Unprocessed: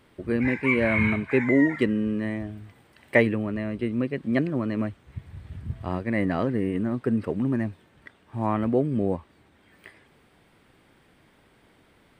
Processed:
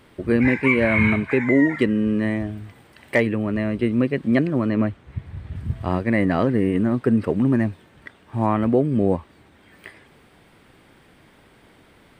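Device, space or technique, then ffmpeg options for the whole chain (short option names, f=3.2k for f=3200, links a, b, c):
clipper into limiter: -filter_complex "[0:a]asettb=1/sr,asplit=3[a][b][c];[a]atrim=end=4.694[d];[b]atrim=start=4.69:end=5.56,asetpts=PTS-STARTPTS,afade=t=in:d=0.004:c=qsin,afade=t=out:st=0.866:d=0.004:c=qsin,aemphasis=mode=reproduction:type=cd[e];[c]atrim=start=5.556[f];[d][e]acrossfade=d=0.004:c1=hsin:c2=qsin[g];[g][f]acrossfade=d=0.004:c1=qsin:c2=hsin,asoftclip=type=hard:threshold=-7dB,alimiter=limit=-13.5dB:level=0:latency=1:release=388,volume=6.5dB"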